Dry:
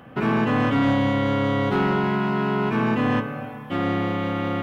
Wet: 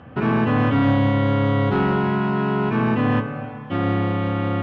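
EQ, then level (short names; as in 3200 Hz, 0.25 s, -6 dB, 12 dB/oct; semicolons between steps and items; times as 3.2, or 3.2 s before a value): air absorption 150 m; bell 85 Hz +10.5 dB 0.68 oct; notch 2100 Hz, Q 25; +1.5 dB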